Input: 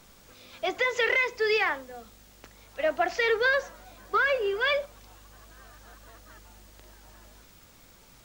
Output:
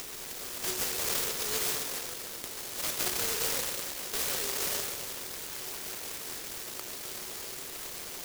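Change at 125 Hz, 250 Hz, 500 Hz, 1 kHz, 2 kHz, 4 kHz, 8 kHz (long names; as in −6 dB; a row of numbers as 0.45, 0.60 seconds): can't be measured, −2.0 dB, −12.5 dB, −9.5 dB, −13.0 dB, +1.5 dB, +18.5 dB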